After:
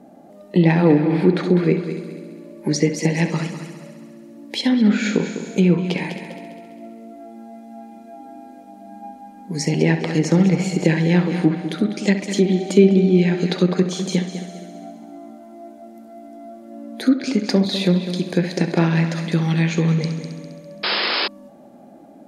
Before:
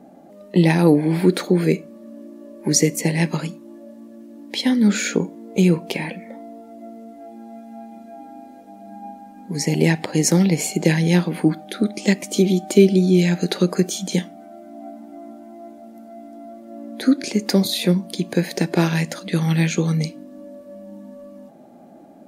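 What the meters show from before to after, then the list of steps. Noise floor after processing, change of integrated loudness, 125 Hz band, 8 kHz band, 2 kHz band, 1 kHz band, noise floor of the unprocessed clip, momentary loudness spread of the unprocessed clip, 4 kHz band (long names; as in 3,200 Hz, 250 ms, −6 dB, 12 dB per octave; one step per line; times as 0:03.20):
−44 dBFS, +0.5 dB, +1.0 dB, −7.5 dB, +1.5 dB, +1.5 dB, −44 dBFS, 23 LU, +1.5 dB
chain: echo machine with several playback heads 67 ms, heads first and third, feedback 57%, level −11.5 dB
treble cut that deepens with the level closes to 2,900 Hz, closed at −12.5 dBFS
sound drawn into the spectrogram noise, 0:20.83–0:21.28, 290–5,300 Hz −21 dBFS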